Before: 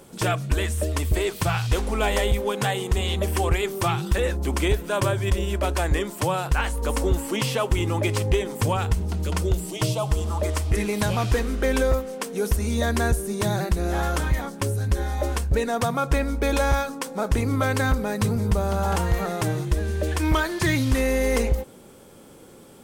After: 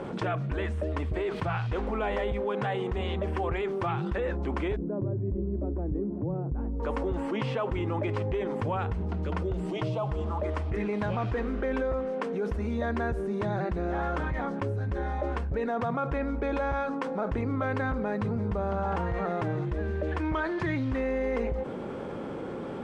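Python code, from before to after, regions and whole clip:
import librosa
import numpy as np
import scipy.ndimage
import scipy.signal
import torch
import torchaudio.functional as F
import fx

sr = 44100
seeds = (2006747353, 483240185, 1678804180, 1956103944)

y = fx.chain(x, sr, fx.lowpass_res(hz=280.0, q=1.5),
    fx.echo_single(ms=382, db=-22.5), at=(4.76, 6.8))
y = scipy.signal.sosfilt(scipy.signal.butter(2, 1800.0, 'lowpass', fs=sr, output='sos'), y)
y = fx.low_shelf(y, sr, hz=80.0, db=-9.5)
y = fx.env_flatten(y, sr, amount_pct=70)
y = F.gain(torch.from_numpy(y), -7.5).numpy()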